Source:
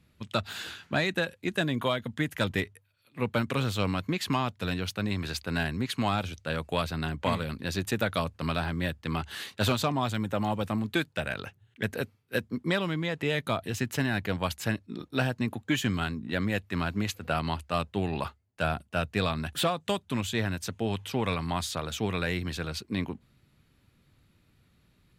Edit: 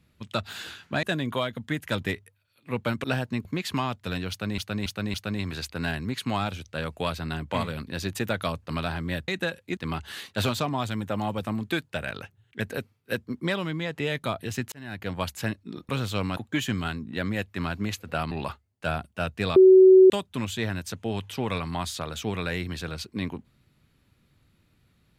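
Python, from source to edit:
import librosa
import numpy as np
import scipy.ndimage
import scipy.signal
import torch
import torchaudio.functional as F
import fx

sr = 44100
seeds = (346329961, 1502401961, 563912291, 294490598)

y = fx.edit(x, sr, fx.move(start_s=1.03, length_s=0.49, to_s=9.0),
    fx.swap(start_s=3.53, length_s=0.48, other_s=15.12, other_length_s=0.41),
    fx.repeat(start_s=4.86, length_s=0.28, count=4),
    fx.fade_in_span(start_s=13.95, length_s=0.46),
    fx.cut(start_s=17.47, length_s=0.6),
    fx.bleep(start_s=19.32, length_s=0.54, hz=376.0, db=-9.5), tone=tone)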